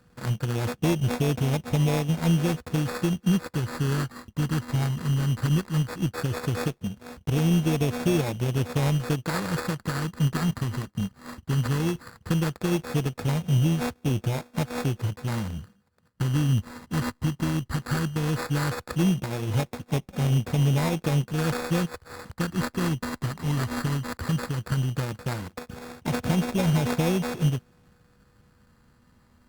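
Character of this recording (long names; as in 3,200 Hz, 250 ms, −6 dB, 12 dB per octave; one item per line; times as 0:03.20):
a buzz of ramps at a fixed pitch in blocks of 16 samples
phaser sweep stages 6, 0.16 Hz, lowest notch 540–1,100 Hz
aliases and images of a low sample rate 3,000 Hz, jitter 0%
Opus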